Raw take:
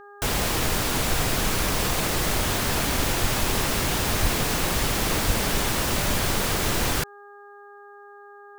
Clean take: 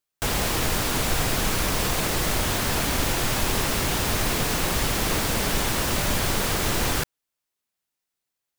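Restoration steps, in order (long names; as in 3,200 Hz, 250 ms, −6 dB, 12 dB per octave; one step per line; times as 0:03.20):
hum removal 407.1 Hz, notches 4
high-pass at the plosives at 0:03.20/0:04.21/0:05.26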